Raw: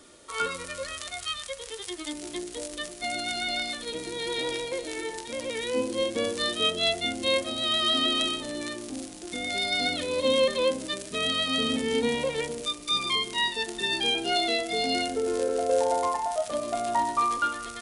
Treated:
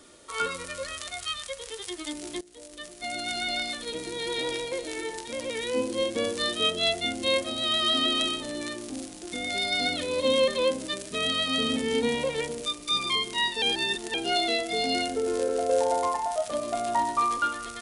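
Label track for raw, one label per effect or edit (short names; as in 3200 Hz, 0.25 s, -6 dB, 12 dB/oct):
2.410000	3.360000	fade in, from -19.5 dB
13.620000	14.140000	reverse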